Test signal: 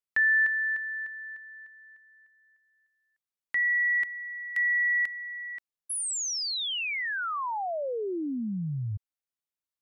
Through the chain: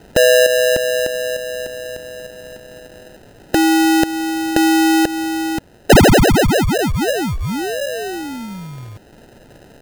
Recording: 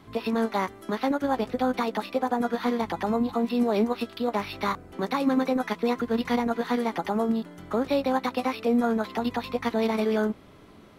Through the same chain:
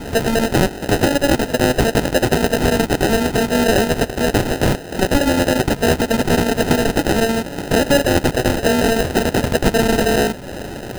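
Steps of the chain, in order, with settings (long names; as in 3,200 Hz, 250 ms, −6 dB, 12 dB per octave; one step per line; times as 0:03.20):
compressor on every frequency bin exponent 0.6
in parallel at −1 dB: brickwall limiter −15 dBFS
on the sum: RIAA equalisation recording
transient designer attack +1 dB, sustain −4 dB
decimation without filtering 39×
level +4.5 dB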